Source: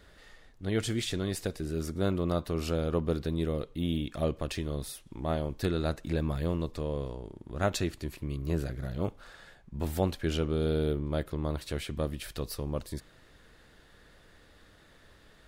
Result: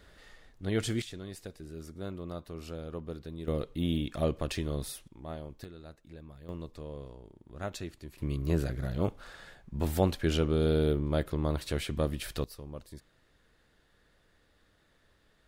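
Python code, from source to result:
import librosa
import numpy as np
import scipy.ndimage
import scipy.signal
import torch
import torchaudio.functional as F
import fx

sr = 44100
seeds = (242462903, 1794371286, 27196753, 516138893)

y = fx.gain(x, sr, db=fx.steps((0.0, -0.5), (1.02, -10.5), (3.48, 0.5), (5.08, -10.0), (5.64, -18.5), (6.49, -9.0), (8.18, 2.0), (12.44, -9.5)))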